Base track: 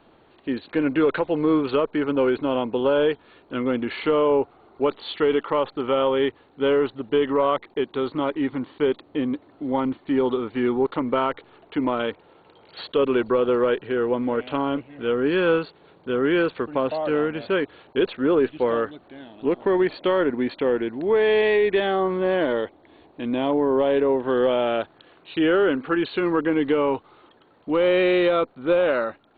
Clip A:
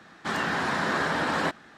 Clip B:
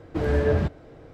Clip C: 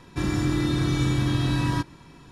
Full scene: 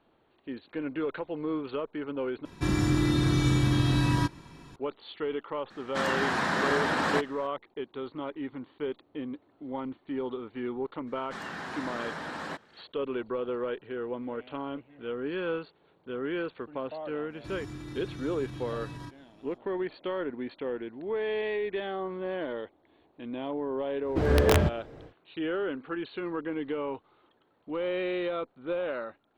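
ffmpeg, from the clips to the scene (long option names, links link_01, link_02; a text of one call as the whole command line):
ffmpeg -i bed.wav -i cue0.wav -i cue1.wav -i cue2.wav -filter_complex "[3:a]asplit=2[link_01][link_02];[1:a]asplit=2[link_03][link_04];[0:a]volume=-12dB[link_05];[link_02]alimiter=limit=-18.5dB:level=0:latency=1:release=44[link_06];[2:a]aeval=exprs='(mod(4.22*val(0)+1,2)-1)/4.22':channel_layout=same[link_07];[link_05]asplit=2[link_08][link_09];[link_08]atrim=end=2.454[link_10];[link_01]atrim=end=2.31,asetpts=PTS-STARTPTS,volume=-1dB[link_11];[link_09]atrim=start=4.756[link_12];[link_03]atrim=end=1.77,asetpts=PTS-STARTPTS,volume=-1dB,afade=type=in:duration=0.004:curve=hsin,afade=type=out:start_time=1.766:duration=0.004:curve=hsin,adelay=5700[link_13];[link_04]atrim=end=1.77,asetpts=PTS-STARTPTS,volume=-11dB,afade=type=in:duration=0.02,afade=type=out:start_time=1.75:duration=0.02,adelay=487746S[link_14];[link_06]atrim=end=2.31,asetpts=PTS-STARTPTS,volume=-14.5dB,afade=type=in:duration=0.05,afade=type=out:start_time=2.26:duration=0.05,adelay=17280[link_15];[link_07]atrim=end=1.13,asetpts=PTS-STARTPTS,volume=-0.5dB,afade=type=in:duration=0.1,afade=type=out:start_time=1.03:duration=0.1,adelay=24010[link_16];[link_10][link_11]acrossfade=duration=0.004:curve1=hsin:curve2=hsin[link_17];[link_17][link_12]acrossfade=duration=0.004:curve1=hsin:curve2=hsin[link_18];[link_18][link_13][link_14][link_15][link_16]amix=inputs=5:normalize=0" out.wav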